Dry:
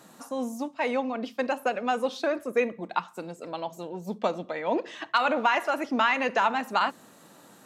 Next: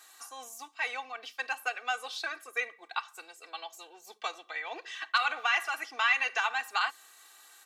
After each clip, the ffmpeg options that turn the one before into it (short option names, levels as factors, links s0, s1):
-af "highpass=1500,aecho=1:1:2.6:0.78"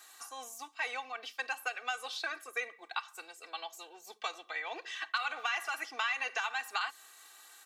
-filter_complex "[0:a]acrossover=split=1300|3900[s0][s1][s2];[s0]acompressor=threshold=0.0126:ratio=4[s3];[s1]acompressor=threshold=0.0158:ratio=4[s4];[s2]acompressor=threshold=0.00631:ratio=4[s5];[s3][s4][s5]amix=inputs=3:normalize=0"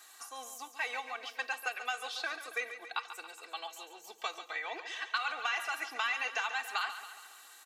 -af "aecho=1:1:139|278|417|556|695|834:0.282|0.158|0.0884|0.0495|0.0277|0.0155"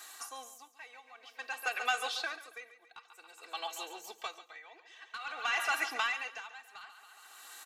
-af "asoftclip=type=tanh:threshold=0.0596,aeval=exprs='val(0)*pow(10,-21*(0.5-0.5*cos(2*PI*0.52*n/s))/20)':c=same,volume=2"